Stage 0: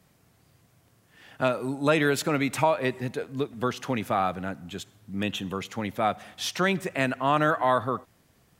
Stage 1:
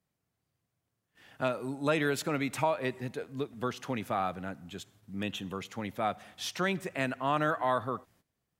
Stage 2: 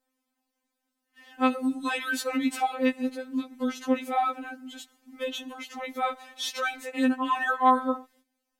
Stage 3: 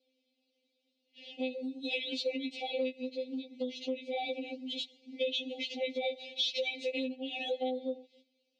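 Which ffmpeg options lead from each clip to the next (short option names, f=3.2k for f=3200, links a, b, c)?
-af "agate=range=-15dB:threshold=-56dB:ratio=16:detection=peak,volume=-6dB"
-af "afftfilt=real='re*3.46*eq(mod(b,12),0)':imag='im*3.46*eq(mod(b,12),0)':win_size=2048:overlap=0.75,volume=6dB"
-af "asuperstop=centerf=1200:order=12:qfactor=0.79,acompressor=threshold=-38dB:ratio=6,highpass=360,equalizer=f=650:t=q:w=4:g=5,equalizer=f=1.8k:t=q:w=4:g=-10,equalizer=f=4k:t=q:w=4:g=5,lowpass=f=4.4k:w=0.5412,lowpass=f=4.4k:w=1.3066,volume=8dB"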